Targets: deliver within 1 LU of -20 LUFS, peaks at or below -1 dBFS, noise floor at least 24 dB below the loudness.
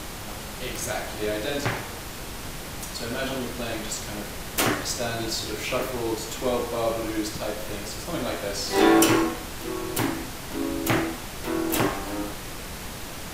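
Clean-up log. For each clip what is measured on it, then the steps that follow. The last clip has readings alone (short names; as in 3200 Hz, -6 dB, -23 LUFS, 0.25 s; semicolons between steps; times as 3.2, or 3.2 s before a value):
noise floor -36 dBFS; noise floor target -52 dBFS; loudness -27.5 LUFS; peak -4.5 dBFS; loudness target -20.0 LUFS
-> noise print and reduce 16 dB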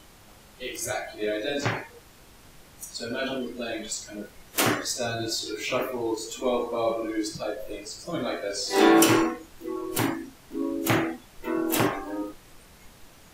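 noise floor -52 dBFS; loudness -27.5 LUFS; peak -4.5 dBFS; loudness target -20.0 LUFS
-> gain +7.5 dB; limiter -1 dBFS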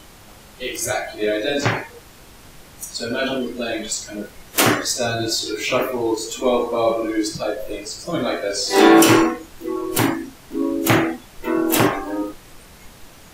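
loudness -20.0 LUFS; peak -1.0 dBFS; noise floor -45 dBFS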